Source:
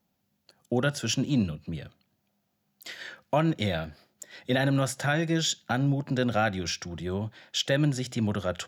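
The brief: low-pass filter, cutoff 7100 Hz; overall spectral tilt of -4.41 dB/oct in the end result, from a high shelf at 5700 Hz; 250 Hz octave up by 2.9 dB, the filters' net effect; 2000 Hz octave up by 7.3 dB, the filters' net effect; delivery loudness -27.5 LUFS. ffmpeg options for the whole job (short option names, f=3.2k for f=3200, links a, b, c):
-af "lowpass=7.1k,equalizer=f=250:t=o:g=3.5,equalizer=f=2k:t=o:g=9,highshelf=f=5.7k:g=8,volume=-2.5dB"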